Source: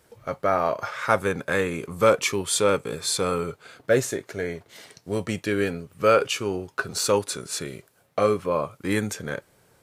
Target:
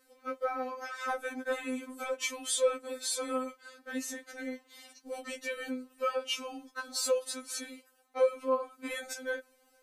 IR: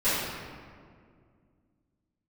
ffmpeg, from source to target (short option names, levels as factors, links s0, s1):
-filter_complex "[0:a]equalizer=f=240:t=o:w=0.27:g=-3.5,acrossover=split=150[s0][s1];[s1]acompressor=threshold=0.0708:ratio=6[s2];[s0][s2]amix=inputs=2:normalize=0,afftfilt=real='re*3.46*eq(mod(b,12),0)':imag='im*3.46*eq(mod(b,12),0)':win_size=2048:overlap=0.75,volume=0.668"